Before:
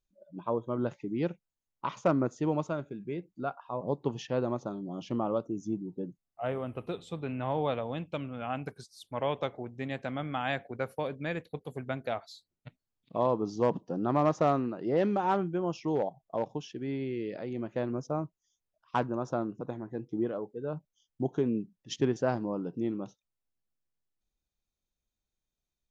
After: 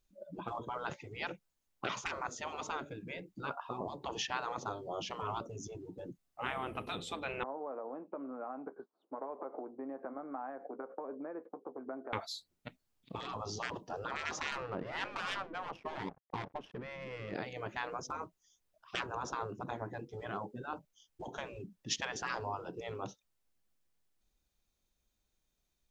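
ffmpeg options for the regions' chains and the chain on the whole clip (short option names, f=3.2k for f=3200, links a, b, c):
-filter_complex "[0:a]asettb=1/sr,asplit=3[a][b][c];[a]atrim=end=7.434[d];[b]atrim=start=7.43:end=12.13,asetpts=PTS-STARTPTS,afade=t=in:d=0.004:c=qsin,afade=t=out:st=4.696:d=0.004:c=qsin,acompressor=threshold=-41dB:ratio=20:attack=3.2:release=140:knee=1:detection=peak,asuperpass=centerf=590:order=8:qfactor=0.56,asplit=2[e][f];[f]adelay=15,volume=-11dB[g];[e][g]amix=inputs=2:normalize=0,atrim=end_sample=207270[h];[c]atrim=start=12.126[i];[d][h]acrossfade=d=0.004:c1=hsin:c2=qsin[j];[j][i]acrossfade=d=0.004:c1=qsin:c2=hsin,asettb=1/sr,asplit=3[k][l][m];[k]atrim=end=14.524[n];[l]atrim=start=14.52:end=17.35,asetpts=PTS-STARTPTS,afade=t=in:d=0.004:c=qsin,afade=t=out:st=2.826:d=0.004:c=qsin,aeval=exprs='sgn(val(0))*max(abs(val(0))-0.00188,0)':c=same,adynamicsmooth=sensitivity=4.5:basefreq=1.3k[o];[m]atrim=start=17.346[p];[n][o]acrossfade=d=0.004:c1=hsin:c2=qsin[q];[q][p]acrossfade=d=0.004:c1=qsin:c2=hsin,afftfilt=real='re*lt(hypot(re,im),0.0501)':imag='im*lt(hypot(re,im),0.0501)':win_size=1024:overlap=0.75,equalizer=f=120:t=o:w=0.76:g=-3,volume=7dB"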